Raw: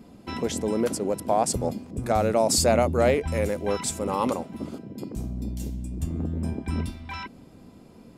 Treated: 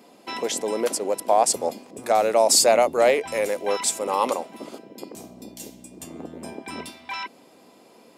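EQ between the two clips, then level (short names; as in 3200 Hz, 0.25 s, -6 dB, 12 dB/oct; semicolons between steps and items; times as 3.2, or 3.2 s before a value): HPF 510 Hz 12 dB/oct; bell 1400 Hz -4.5 dB 0.52 oct; +6.0 dB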